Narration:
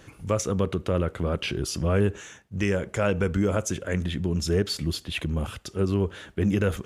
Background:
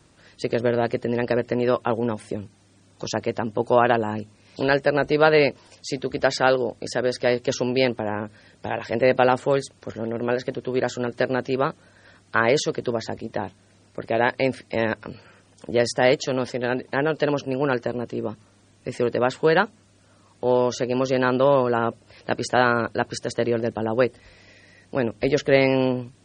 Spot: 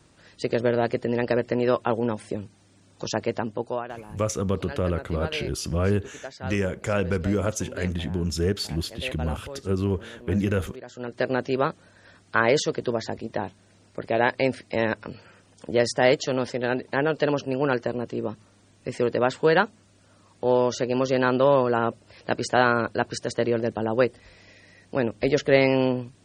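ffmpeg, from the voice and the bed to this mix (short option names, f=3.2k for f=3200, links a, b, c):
-filter_complex "[0:a]adelay=3900,volume=-0.5dB[a];[1:a]volume=16dB,afade=t=out:st=3.36:d=0.49:silence=0.141254,afade=t=in:st=10.86:d=0.47:silence=0.141254[b];[a][b]amix=inputs=2:normalize=0"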